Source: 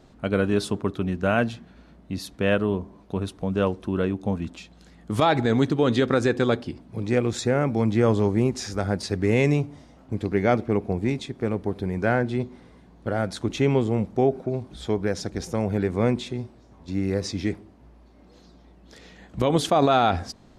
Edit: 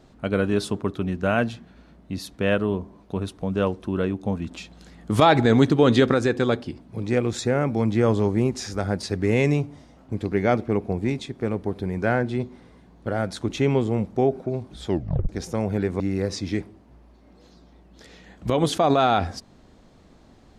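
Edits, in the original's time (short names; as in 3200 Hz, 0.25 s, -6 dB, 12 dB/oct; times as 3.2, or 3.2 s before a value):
4.51–6.13 gain +4 dB
14.88 tape stop 0.41 s
16–16.92 cut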